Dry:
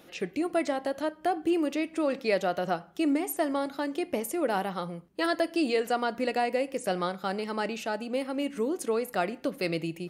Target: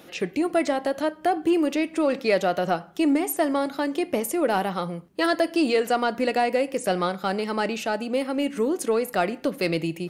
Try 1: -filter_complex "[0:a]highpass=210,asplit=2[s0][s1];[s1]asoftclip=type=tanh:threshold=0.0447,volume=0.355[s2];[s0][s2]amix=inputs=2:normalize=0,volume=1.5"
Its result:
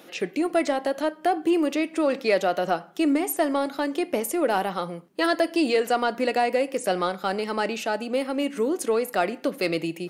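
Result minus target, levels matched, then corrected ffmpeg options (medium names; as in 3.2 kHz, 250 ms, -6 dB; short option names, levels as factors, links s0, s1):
125 Hz band -4.5 dB
-filter_complex "[0:a]highpass=58,asplit=2[s0][s1];[s1]asoftclip=type=tanh:threshold=0.0447,volume=0.355[s2];[s0][s2]amix=inputs=2:normalize=0,volume=1.5"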